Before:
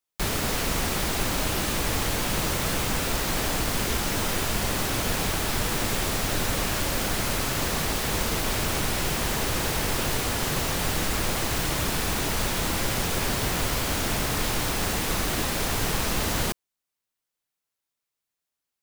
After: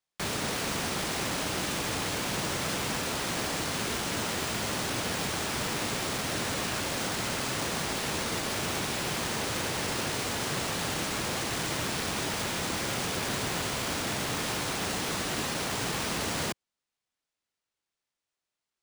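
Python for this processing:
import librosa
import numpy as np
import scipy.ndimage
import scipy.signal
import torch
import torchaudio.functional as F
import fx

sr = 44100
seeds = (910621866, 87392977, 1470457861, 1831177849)

y = scipy.signal.sosfilt(scipy.signal.butter(2, 110.0, 'highpass', fs=sr, output='sos'), x)
y = np.repeat(y[::3], 3)[:len(y)]
y = y * 10.0 ** (-4.0 / 20.0)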